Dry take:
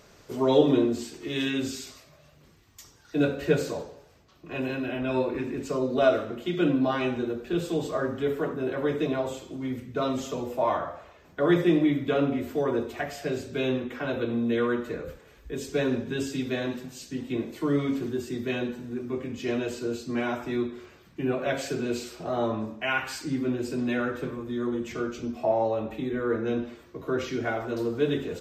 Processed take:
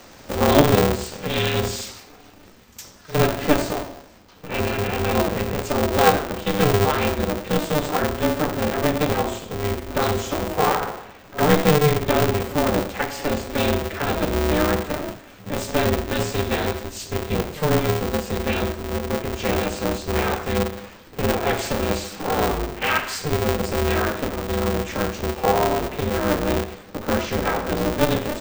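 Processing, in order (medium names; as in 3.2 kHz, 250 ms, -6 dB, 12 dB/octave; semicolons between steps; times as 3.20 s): frequency shift -13 Hz; pre-echo 61 ms -21 dB; in parallel at -1 dB: compression, threshold -35 dBFS, peak gain reduction 19.5 dB; on the sum: polarity switched at an audio rate 150 Hz; trim +4 dB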